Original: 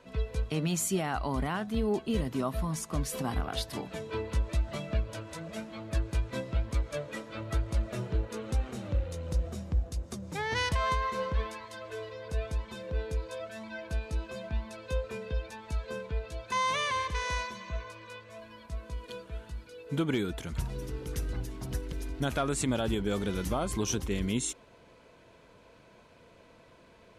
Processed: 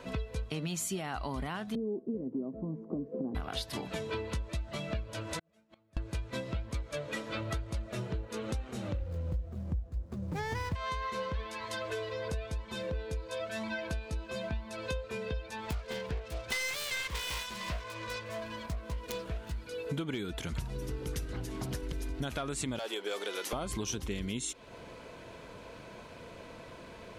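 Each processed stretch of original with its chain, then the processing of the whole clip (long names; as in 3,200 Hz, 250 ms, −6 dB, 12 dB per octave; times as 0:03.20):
0:01.75–0:03.35: flat-topped band-pass 340 Hz, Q 1.2 + spectral tilt −2.5 dB per octave
0:05.39–0:05.97: gate with flip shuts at −35 dBFS, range −38 dB + downward compressor 3 to 1, threshold −56 dBFS
0:09.01–0:10.75: running median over 15 samples + low-shelf EQ 150 Hz +9.5 dB
0:15.69–0:19.62: phase distortion by the signal itself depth 0.69 ms + single-tap delay 363 ms −24 dB
0:21.25–0:21.83: high-pass filter 100 Hz 6 dB per octave + highs frequency-modulated by the lows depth 0.19 ms
0:22.79–0:23.53: high-pass filter 410 Hz 24 dB per octave + hard clipping −29 dBFS
whole clip: dynamic equaliser 3,500 Hz, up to +4 dB, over −50 dBFS, Q 0.81; downward compressor 6 to 1, threshold −43 dBFS; level +9 dB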